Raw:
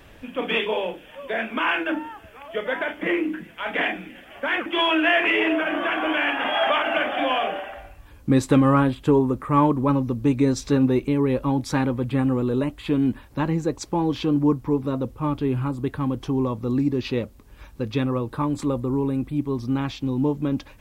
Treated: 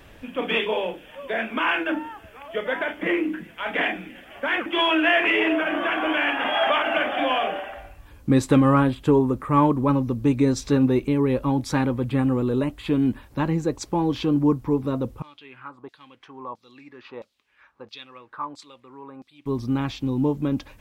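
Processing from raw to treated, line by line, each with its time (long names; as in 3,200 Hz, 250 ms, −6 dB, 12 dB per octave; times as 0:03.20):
0:15.22–0:19.46: auto-filter band-pass saw down 1.5 Hz 810–5,000 Hz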